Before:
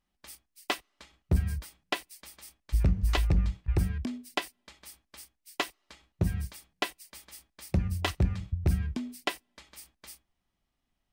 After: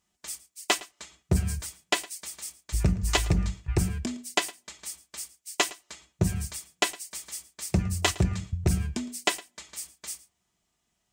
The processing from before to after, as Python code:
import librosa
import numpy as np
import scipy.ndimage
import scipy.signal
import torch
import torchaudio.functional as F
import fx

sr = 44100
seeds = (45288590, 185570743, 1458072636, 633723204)

y = fx.highpass(x, sr, hz=120.0, slope=6)
y = fx.peak_eq(y, sr, hz=7200.0, db=13.0, octaves=0.72)
y = fx.notch_comb(y, sr, f0_hz=270.0)
y = y + 10.0 ** (-20.0 / 20.0) * np.pad(y, (int(111 * sr / 1000.0), 0))[:len(y)]
y = F.gain(torch.from_numpy(y), 6.0).numpy()